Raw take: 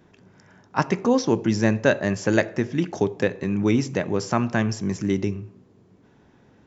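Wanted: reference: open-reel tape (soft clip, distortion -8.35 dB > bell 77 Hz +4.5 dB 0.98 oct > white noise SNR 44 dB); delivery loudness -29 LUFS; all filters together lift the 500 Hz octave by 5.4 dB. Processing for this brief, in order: bell 500 Hz +6.5 dB; soft clip -16.5 dBFS; bell 77 Hz +4.5 dB 0.98 oct; white noise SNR 44 dB; gain -4.5 dB

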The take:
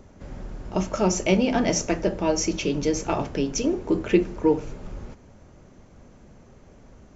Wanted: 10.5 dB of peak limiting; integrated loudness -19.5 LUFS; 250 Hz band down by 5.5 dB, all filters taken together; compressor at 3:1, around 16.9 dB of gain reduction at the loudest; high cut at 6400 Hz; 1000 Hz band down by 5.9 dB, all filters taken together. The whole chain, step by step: LPF 6400 Hz; bell 250 Hz -7.5 dB; bell 1000 Hz -7.5 dB; compressor 3:1, threshold -41 dBFS; gain +26 dB; limiter -8 dBFS

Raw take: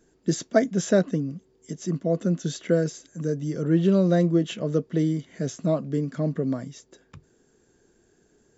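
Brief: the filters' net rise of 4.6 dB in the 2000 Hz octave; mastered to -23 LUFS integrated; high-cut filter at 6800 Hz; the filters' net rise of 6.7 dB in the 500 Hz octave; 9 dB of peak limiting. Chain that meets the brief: LPF 6800 Hz; bell 500 Hz +8 dB; bell 2000 Hz +5.5 dB; gain +0.5 dB; limiter -11 dBFS

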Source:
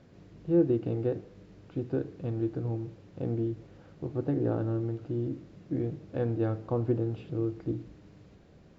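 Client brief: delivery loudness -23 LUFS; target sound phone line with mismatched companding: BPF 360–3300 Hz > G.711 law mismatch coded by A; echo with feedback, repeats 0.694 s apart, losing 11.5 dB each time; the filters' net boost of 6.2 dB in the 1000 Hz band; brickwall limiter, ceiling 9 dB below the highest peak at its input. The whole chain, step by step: bell 1000 Hz +9 dB; limiter -22 dBFS; BPF 360–3300 Hz; feedback echo 0.694 s, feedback 27%, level -11.5 dB; G.711 law mismatch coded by A; gain +17 dB

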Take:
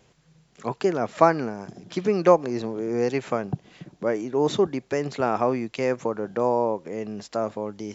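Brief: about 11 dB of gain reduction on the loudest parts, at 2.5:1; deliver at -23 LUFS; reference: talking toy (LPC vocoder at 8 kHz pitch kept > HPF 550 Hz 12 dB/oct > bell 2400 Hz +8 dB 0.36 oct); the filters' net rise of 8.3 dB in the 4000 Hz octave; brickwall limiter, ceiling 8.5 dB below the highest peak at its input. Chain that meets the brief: bell 4000 Hz +9 dB; compressor 2.5:1, threshold -27 dBFS; limiter -19.5 dBFS; LPC vocoder at 8 kHz pitch kept; HPF 550 Hz 12 dB/oct; bell 2400 Hz +8 dB 0.36 oct; gain +14 dB

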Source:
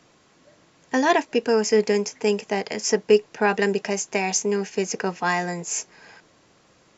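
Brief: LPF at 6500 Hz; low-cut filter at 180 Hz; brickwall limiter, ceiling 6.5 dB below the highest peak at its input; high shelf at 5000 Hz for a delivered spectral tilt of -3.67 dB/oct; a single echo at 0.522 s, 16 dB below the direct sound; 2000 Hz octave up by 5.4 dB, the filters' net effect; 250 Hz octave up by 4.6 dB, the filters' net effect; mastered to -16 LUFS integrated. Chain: HPF 180 Hz; LPF 6500 Hz; bell 250 Hz +7.5 dB; bell 2000 Hz +6 dB; high shelf 5000 Hz +3.5 dB; limiter -9.5 dBFS; echo 0.522 s -16 dB; gain +6 dB

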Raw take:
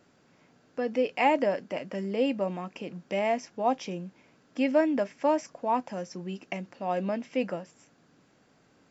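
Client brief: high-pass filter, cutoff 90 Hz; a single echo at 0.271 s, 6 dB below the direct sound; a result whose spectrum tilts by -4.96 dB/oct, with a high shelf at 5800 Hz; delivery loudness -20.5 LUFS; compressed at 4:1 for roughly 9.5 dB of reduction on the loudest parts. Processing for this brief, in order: HPF 90 Hz; high shelf 5800 Hz -3.5 dB; compressor 4:1, threshold -29 dBFS; echo 0.271 s -6 dB; gain +13.5 dB

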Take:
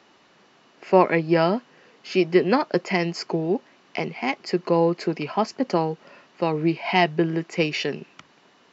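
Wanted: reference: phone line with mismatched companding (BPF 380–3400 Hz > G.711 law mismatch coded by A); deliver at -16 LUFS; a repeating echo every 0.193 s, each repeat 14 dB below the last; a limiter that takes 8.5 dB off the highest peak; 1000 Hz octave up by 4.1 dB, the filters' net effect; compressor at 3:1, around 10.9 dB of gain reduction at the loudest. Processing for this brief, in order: bell 1000 Hz +5.5 dB; compressor 3:1, threshold -23 dBFS; limiter -18.5 dBFS; BPF 380–3400 Hz; feedback echo 0.193 s, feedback 20%, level -14 dB; G.711 law mismatch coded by A; gain +18 dB

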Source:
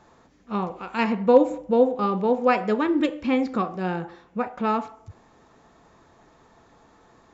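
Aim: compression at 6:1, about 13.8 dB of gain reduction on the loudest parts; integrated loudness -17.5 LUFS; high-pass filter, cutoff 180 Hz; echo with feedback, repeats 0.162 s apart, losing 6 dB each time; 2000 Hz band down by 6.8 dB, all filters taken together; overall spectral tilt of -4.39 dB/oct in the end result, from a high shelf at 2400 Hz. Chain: HPF 180 Hz; bell 2000 Hz -6 dB; high shelf 2400 Hz -6 dB; compressor 6:1, threshold -26 dBFS; feedback echo 0.162 s, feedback 50%, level -6 dB; gain +13.5 dB

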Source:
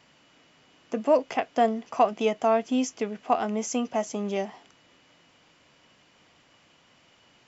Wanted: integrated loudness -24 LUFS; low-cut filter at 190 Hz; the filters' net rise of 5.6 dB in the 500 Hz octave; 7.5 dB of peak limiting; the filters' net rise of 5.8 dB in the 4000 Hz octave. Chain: HPF 190 Hz; bell 500 Hz +7.5 dB; bell 4000 Hz +8.5 dB; gain +1.5 dB; limiter -11 dBFS

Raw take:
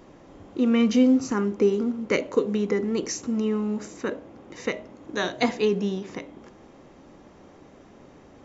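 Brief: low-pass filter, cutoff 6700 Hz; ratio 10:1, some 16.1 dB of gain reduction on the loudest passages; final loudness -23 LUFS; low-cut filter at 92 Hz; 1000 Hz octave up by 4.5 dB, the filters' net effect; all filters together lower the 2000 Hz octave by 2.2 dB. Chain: HPF 92 Hz; LPF 6700 Hz; bell 1000 Hz +7 dB; bell 2000 Hz -4.5 dB; compressor 10:1, threshold -31 dBFS; gain +13.5 dB

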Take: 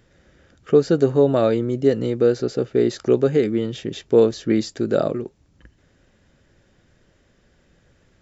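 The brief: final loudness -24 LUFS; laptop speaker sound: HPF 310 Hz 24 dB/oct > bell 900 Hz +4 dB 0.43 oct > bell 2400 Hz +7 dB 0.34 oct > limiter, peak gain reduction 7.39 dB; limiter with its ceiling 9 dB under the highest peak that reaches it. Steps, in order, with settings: limiter -13 dBFS; HPF 310 Hz 24 dB/oct; bell 900 Hz +4 dB 0.43 oct; bell 2400 Hz +7 dB 0.34 oct; gain +5.5 dB; limiter -14 dBFS

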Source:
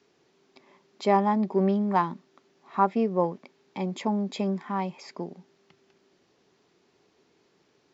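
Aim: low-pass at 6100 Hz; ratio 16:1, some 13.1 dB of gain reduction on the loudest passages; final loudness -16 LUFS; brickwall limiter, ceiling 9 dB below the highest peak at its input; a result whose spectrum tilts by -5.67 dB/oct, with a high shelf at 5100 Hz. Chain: LPF 6100 Hz; high shelf 5100 Hz -4 dB; compressor 16:1, threshold -29 dBFS; gain +21.5 dB; limiter -6 dBFS

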